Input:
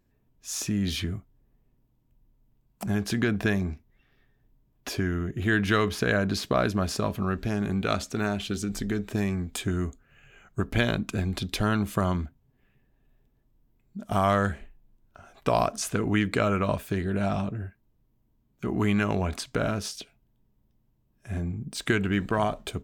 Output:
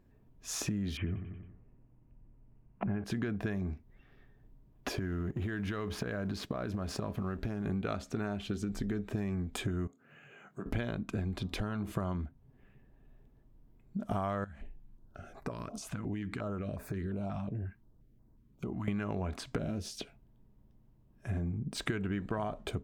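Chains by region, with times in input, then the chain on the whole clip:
0.97–3.04 steep low-pass 2900 Hz 72 dB/oct + feedback echo 91 ms, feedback 49%, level -12.5 dB
4.92–7.66 G.711 law mismatch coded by A + compressor, threshold -30 dBFS
9.87–10.66 HPF 150 Hz 24 dB/oct + compressor 2:1, threshold -56 dBFS + doubler 26 ms -12.5 dB
11.37–11.92 de-hum 80.93 Hz, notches 15 + compressor 2.5:1, threshold -27 dBFS
14.44–18.88 compressor 4:1, threshold -39 dBFS + stepped notch 5.6 Hz 410–3100 Hz
19.58–19.99 bell 1200 Hz -14.5 dB 1.5 oct + doubler 13 ms -7 dB
whole clip: high shelf 2500 Hz -11.5 dB; compressor 6:1, threshold -38 dBFS; gain +5.5 dB

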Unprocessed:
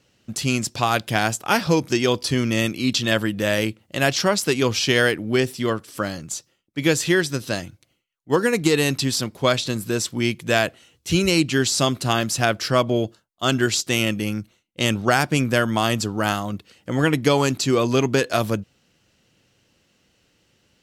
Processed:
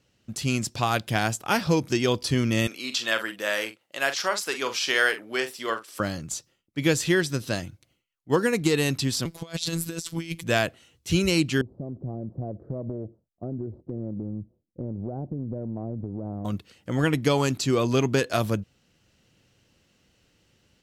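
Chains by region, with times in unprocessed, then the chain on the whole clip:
2.67–6 HPF 520 Hz + dynamic EQ 1400 Hz, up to +5 dB, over -34 dBFS, Q 1.2 + doubler 44 ms -10 dB
9.25–10.44 bell 8600 Hz +6 dB 3 oct + robotiser 166 Hz + negative-ratio compressor -27 dBFS, ratio -0.5
11.61–16.45 inverse Chebyshev low-pass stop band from 2600 Hz, stop band 70 dB + compressor 10:1, threshold -27 dBFS
whole clip: low shelf 130 Hz +6 dB; AGC gain up to 4 dB; gain -6.5 dB

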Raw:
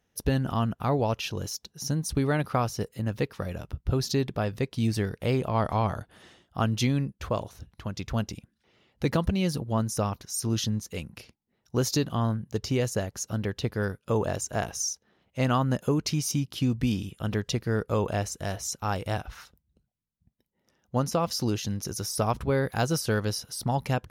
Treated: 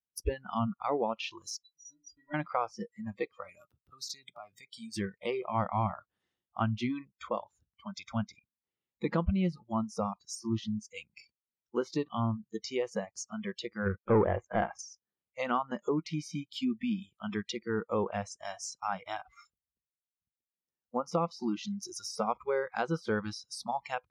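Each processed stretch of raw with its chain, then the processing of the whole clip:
1.64–2.34 steep low-pass 6600 Hz 96 dB/oct + low shelf 70 Hz +11.5 dB + metallic resonator 290 Hz, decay 0.28 s, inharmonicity 0.03
3.49–4.96 HPF 120 Hz + high shelf 7100 Hz +10 dB + compressor 12:1, threshold -31 dBFS
13.86–14.79 LPF 2300 Hz + sample leveller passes 2
whole clip: bell 630 Hz -6 dB 0.21 oct; spectral noise reduction 29 dB; treble ducked by the level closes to 1900 Hz, closed at -25.5 dBFS; gain -2 dB

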